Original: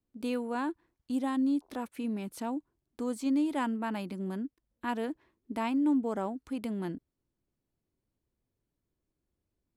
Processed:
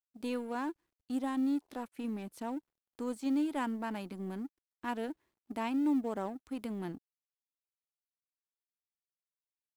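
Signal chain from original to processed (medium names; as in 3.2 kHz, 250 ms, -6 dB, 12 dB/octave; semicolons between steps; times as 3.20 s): companding laws mixed up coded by A; trim -2 dB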